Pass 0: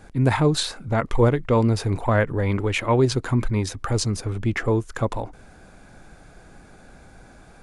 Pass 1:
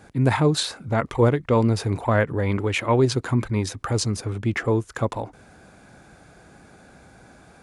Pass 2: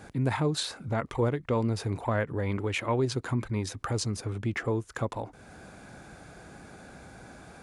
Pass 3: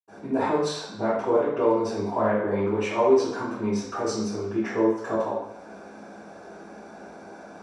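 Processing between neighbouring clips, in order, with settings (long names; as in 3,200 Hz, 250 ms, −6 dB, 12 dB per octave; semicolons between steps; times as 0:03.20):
high-pass filter 75 Hz
downward compressor 1.5 to 1, threshold −43 dBFS, peak gain reduction 11 dB; level +1.5 dB
convolution reverb, pre-delay 77 ms; level −4 dB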